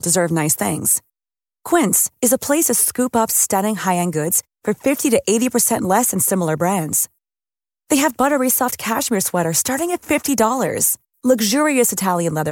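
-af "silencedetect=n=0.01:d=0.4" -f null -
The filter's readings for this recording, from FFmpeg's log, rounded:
silence_start: 0.99
silence_end: 1.66 | silence_duration: 0.66
silence_start: 7.06
silence_end: 7.90 | silence_duration: 0.84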